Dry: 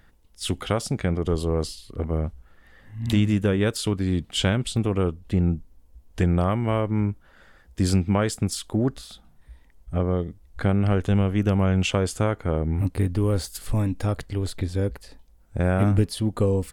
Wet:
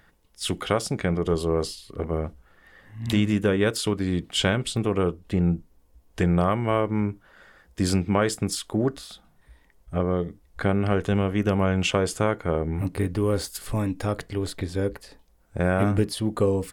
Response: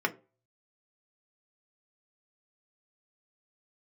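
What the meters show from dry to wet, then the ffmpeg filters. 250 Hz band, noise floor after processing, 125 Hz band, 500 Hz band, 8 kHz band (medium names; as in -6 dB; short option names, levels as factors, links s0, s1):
-0.5 dB, -60 dBFS, -3.5 dB, +1.5 dB, +0.5 dB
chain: -filter_complex "[0:a]lowshelf=f=110:g=-8,asplit=2[s0][s1];[1:a]atrim=start_sample=2205,atrim=end_sample=3969[s2];[s1][s2]afir=irnorm=-1:irlink=0,volume=0.141[s3];[s0][s3]amix=inputs=2:normalize=0"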